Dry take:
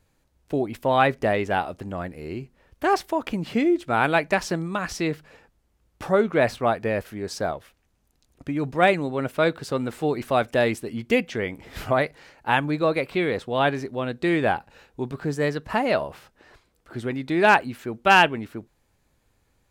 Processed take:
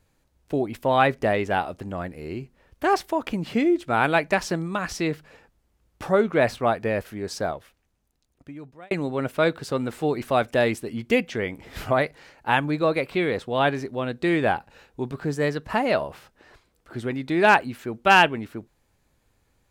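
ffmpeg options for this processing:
-filter_complex "[0:a]asplit=2[a][b];[a]atrim=end=8.91,asetpts=PTS-STARTPTS,afade=t=out:st=7.37:d=1.54[c];[b]atrim=start=8.91,asetpts=PTS-STARTPTS,afade=t=in:d=0.004:c=hsin[d];[c][d]concat=n=2:v=0:a=1"

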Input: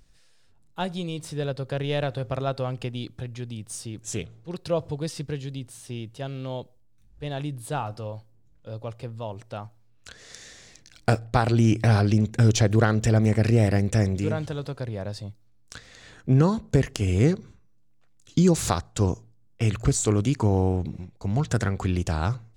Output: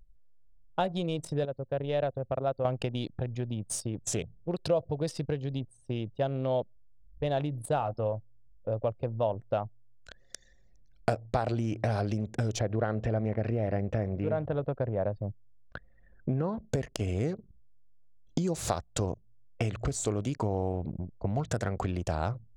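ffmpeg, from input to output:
-filter_complex "[0:a]asettb=1/sr,asplit=3[a][b][c];[a]atrim=end=11.224[d];[b]atrim=start=11.22:end=11.9,asetpts=PTS-STARTPTS,afade=t=in:d=0.004:c=qsin,afade=t=out:st=0.676:d=0.004:c=qsin,highshelf=f=8.8k:g=-5.5[e];[c]atrim=start=11.896[f];[d][e]acrossfade=d=0.004:c1=hsin:c2=qsin[g];[g][f]acrossfade=d=0.004:c1=qsin:c2=hsin,asplit=3[h][i][j];[h]afade=t=out:st=12.58:d=0.02[k];[i]lowpass=2.5k,afade=t=in:st=12.58:d=0.02,afade=t=out:st=16.56:d=0.02[l];[j]afade=t=in:st=16.56:d=0.02[m];[k][l][m]amix=inputs=3:normalize=0,asplit=3[n][o][p];[n]atrim=end=1.452[q];[o]atrim=start=1.448:end=2.652,asetpts=PTS-STARTPTS,volume=-9.5dB[r];[p]atrim=start=2.648[s];[q][r]acrossfade=d=0.004:c1=hsin:c2=hsin[t];[t][s]acrossfade=d=0.004:c1=hsin:c2=hsin,anlmdn=1.58,acompressor=threshold=-33dB:ratio=6,equalizer=f=620:w=1.7:g=9,volume=3.5dB"

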